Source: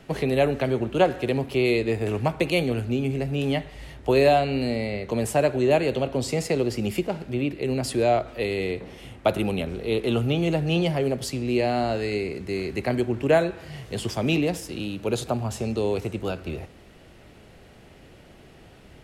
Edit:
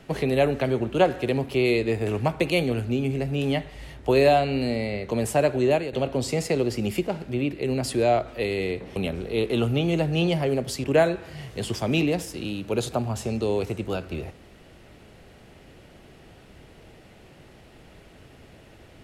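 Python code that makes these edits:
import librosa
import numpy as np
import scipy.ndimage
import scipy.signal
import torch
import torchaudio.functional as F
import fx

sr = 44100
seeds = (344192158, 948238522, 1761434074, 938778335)

y = fx.edit(x, sr, fx.fade_out_to(start_s=5.67, length_s=0.26, floor_db=-12.0),
    fx.cut(start_s=8.96, length_s=0.54),
    fx.cut(start_s=11.38, length_s=1.81), tone=tone)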